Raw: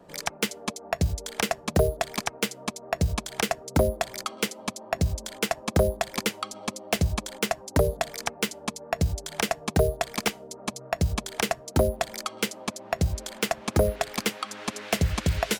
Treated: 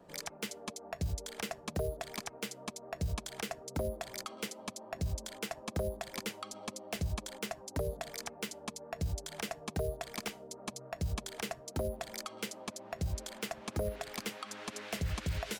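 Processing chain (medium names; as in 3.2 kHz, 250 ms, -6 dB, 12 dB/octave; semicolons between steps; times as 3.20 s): peak limiter -20 dBFS, peak gain reduction 9 dB; trim -6 dB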